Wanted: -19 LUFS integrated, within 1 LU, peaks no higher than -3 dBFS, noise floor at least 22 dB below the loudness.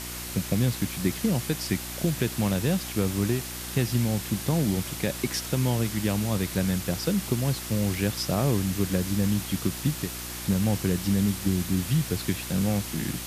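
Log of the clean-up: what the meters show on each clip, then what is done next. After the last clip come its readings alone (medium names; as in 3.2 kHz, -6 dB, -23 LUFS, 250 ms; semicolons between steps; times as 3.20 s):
hum 60 Hz; highest harmonic 360 Hz; hum level -40 dBFS; noise floor -36 dBFS; noise floor target -49 dBFS; loudness -27.0 LUFS; peak level -11.5 dBFS; loudness target -19.0 LUFS
-> de-hum 60 Hz, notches 6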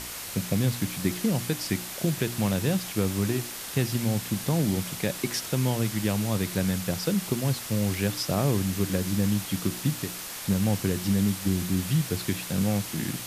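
hum not found; noise floor -37 dBFS; noise floor target -50 dBFS
-> noise reduction 13 dB, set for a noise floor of -37 dBFS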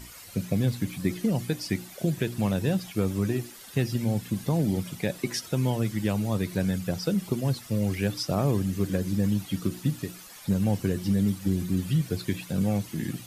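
noise floor -46 dBFS; noise floor target -50 dBFS
-> noise reduction 6 dB, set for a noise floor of -46 dBFS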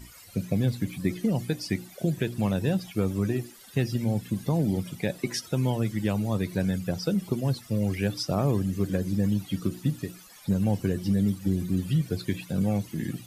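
noise floor -50 dBFS; loudness -28.0 LUFS; peak level -12.5 dBFS; loudness target -19.0 LUFS
-> trim +9 dB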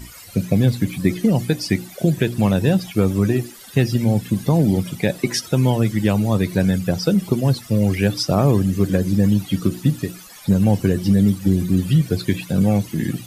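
loudness -19.0 LUFS; peak level -3.5 dBFS; noise floor -41 dBFS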